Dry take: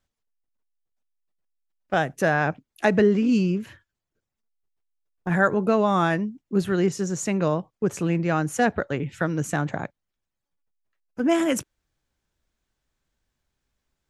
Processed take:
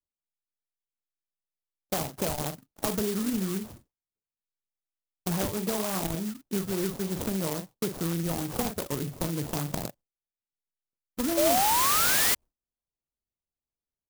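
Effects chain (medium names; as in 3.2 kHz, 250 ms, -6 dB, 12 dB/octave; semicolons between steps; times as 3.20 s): doubling 42 ms -8.5 dB; compression 5:1, threshold -27 dBFS, peak gain reduction 12 dB; decimation with a swept rate 23×, swing 60% 3.5 Hz; painted sound rise, 11.37–12.35 s, 570–2100 Hz -23 dBFS; gate with hold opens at -46 dBFS; sampling jitter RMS 0.14 ms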